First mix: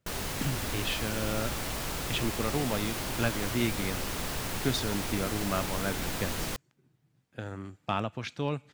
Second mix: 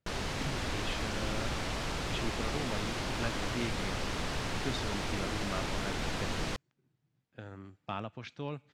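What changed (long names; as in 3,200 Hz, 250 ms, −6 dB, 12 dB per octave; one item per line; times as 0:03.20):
speech −7.5 dB
master: add low-pass filter 5,500 Hz 12 dB per octave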